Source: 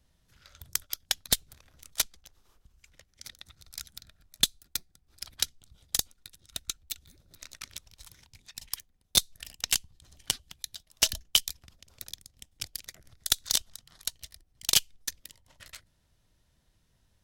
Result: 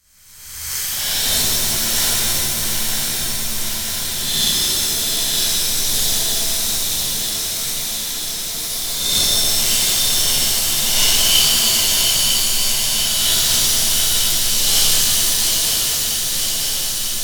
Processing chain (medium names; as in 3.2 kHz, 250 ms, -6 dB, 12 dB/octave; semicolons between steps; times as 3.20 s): reverse spectral sustain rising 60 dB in 1.23 s; shuffle delay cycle 951 ms, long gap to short 3:1, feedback 74%, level -6 dB; pitch-shifted reverb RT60 3.2 s, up +7 st, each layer -2 dB, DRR -11 dB; trim -6.5 dB